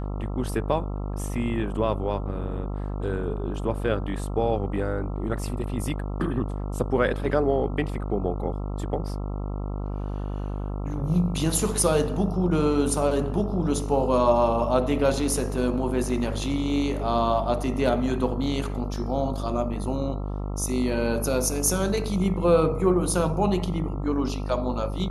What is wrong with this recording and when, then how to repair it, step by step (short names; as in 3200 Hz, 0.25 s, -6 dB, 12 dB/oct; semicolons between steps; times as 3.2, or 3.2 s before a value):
buzz 50 Hz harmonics 27 -30 dBFS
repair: de-hum 50 Hz, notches 27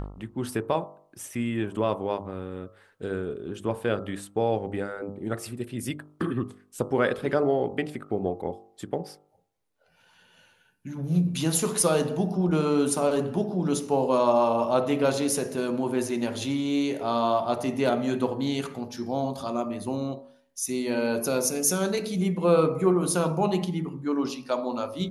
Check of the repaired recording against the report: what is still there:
none